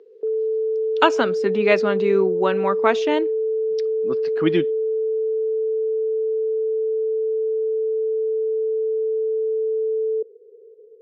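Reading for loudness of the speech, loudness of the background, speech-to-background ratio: -21.5 LUFS, -23.0 LUFS, 1.5 dB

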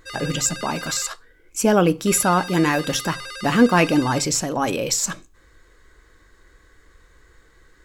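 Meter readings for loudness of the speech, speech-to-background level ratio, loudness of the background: -20.5 LUFS, 13.0 dB, -33.5 LUFS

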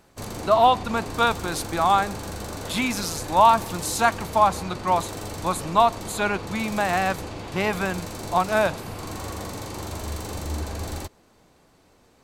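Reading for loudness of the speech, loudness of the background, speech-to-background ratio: -23.0 LUFS, -34.0 LUFS, 11.0 dB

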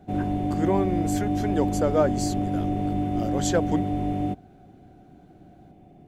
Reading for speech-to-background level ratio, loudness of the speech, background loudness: -1.0 dB, -27.5 LUFS, -26.5 LUFS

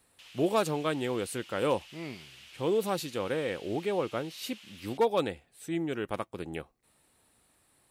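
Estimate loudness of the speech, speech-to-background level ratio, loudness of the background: -32.0 LUFS, 18.0 dB, -50.0 LUFS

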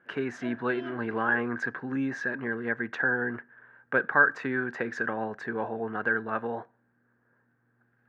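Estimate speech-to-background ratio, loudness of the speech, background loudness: 17.0 dB, -29.5 LUFS, -46.5 LUFS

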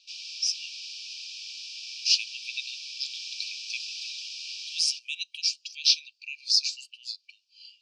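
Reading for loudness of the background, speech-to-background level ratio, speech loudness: -36.5 LUFS, 8.5 dB, -28.0 LUFS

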